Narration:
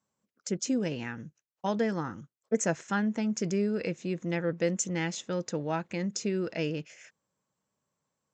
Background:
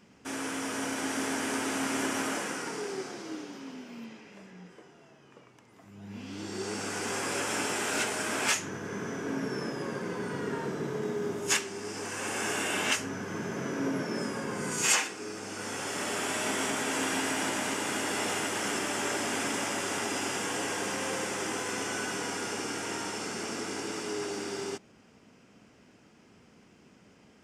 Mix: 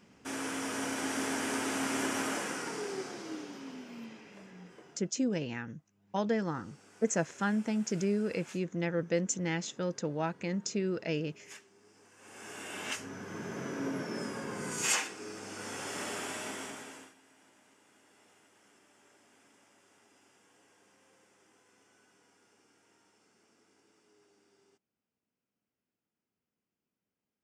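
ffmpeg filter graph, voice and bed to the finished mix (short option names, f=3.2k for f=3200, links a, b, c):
-filter_complex "[0:a]adelay=4500,volume=-2dB[a];[1:a]volume=18dB,afade=t=out:st=4.93:d=0.23:silence=0.0749894,afade=t=in:st=12.17:d=1.4:silence=0.1,afade=t=out:st=16:d=1.14:silence=0.0375837[b];[a][b]amix=inputs=2:normalize=0"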